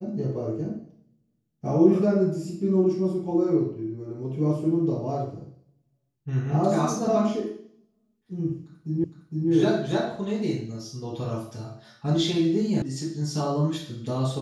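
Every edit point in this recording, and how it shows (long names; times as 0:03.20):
0:09.04: the same again, the last 0.46 s
0:12.82: cut off before it has died away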